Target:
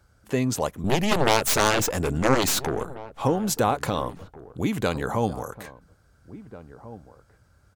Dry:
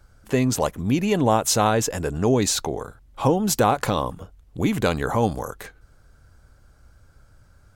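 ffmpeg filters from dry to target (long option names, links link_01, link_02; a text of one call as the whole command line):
ffmpeg -i in.wav -filter_complex "[0:a]highpass=57,asettb=1/sr,asplit=3[link_01][link_02][link_03];[link_01]atrim=end=0.844[link_04];[link_02]atrim=start=0.84:end=2.85,asetpts=PTS-STARTPTS,afade=type=in:duration=0.004:curve=qsin,afade=type=out:start_time=2.006:duration=0.004:curve=qsin,aeval=exprs='0.531*(cos(1*acos(clip(val(0)/0.531,-1,1)))-cos(1*PI/2))+0.237*(cos(7*acos(clip(val(0)/0.531,-1,1)))-cos(7*PI/2))+0.075*(cos(8*acos(clip(val(0)/0.531,-1,1)))-cos(8*PI/2))':channel_layout=same[link_05];[link_03]atrim=start=2.846[link_06];[link_04][link_05]acrossfade=duration=0.004:curve1=hsin:curve2=qsin[link_07];[link_07][link_06]acrossfade=duration=0.004:curve1=qsin:curve2=hsin,asplit=2[link_08][link_09];[link_09]adelay=1691,volume=-16dB,highshelf=frequency=4000:gain=-38[link_10];[link_08][link_10]amix=inputs=2:normalize=0,volume=-3.5dB" out.wav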